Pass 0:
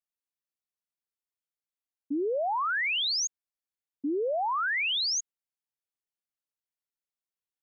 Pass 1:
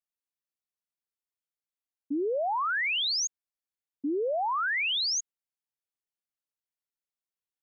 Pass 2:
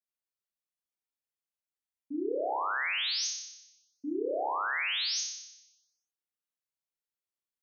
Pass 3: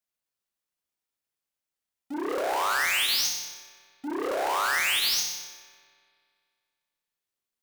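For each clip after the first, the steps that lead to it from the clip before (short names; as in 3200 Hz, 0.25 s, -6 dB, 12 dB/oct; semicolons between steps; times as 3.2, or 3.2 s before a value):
nothing audible
flutter echo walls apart 5.2 m, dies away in 0.91 s; gain -7.5 dB
half-waves squared off; spring tank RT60 2.2 s, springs 48 ms, chirp 25 ms, DRR 16 dB; core saturation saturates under 1300 Hz; gain +4.5 dB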